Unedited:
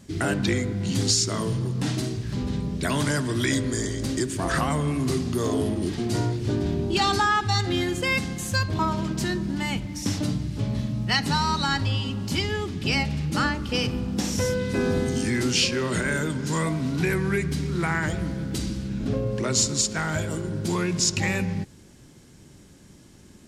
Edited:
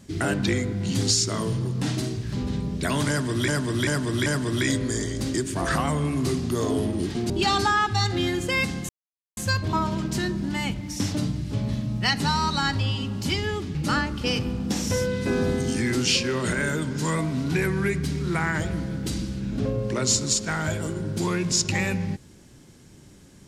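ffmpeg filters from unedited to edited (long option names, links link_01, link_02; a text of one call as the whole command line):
ffmpeg -i in.wav -filter_complex "[0:a]asplit=7[link_01][link_02][link_03][link_04][link_05][link_06][link_07];[link_01]atrim=end=3.482[link_08];[link_02]atrim=start=3.088:end=3.482[link_09];[link_03]atrim=start=3.088:end=3.482[link_10];[link_04]atrim=start=3.088:end=6.132[link_11];[link_05]atrim=start=6.838:end=8.43,asetpts=PTS-STARTPTS,afade=type=out:start_time=1.588:duration=0.004:curve=hsin,apad=pad_dur=0.48[link_12];[link_06]atrim=start=8.43:end=12.812,asetpts=PTS-STARTPTS,afade=type=in:duration=0.004:curve=hsin[link_13];[link_07]atrim=start=13.228[link_14];[link_08][link_09]acrossfade=duration=0.004:curve1=hsin:curve2=hsin[link_15];[link_15][link_10]acrossfade=duration=0.004:curve1=hsin:curve2=hsin[link_16];[link_16][link_11]acrossfade=duration=0.004:curve1=hsin:curve2=hsin[link_17];[link_12][link_13]concat=n=2:v=0:a=1[link_18];[link_17][link_18]acrossfade=duration=0.004:curve1=hsin:curve2=hsin[link_19];[link_19][link_14]acrossfade=duration=0.004:curve1=hsin:curve2=hsin" out.wav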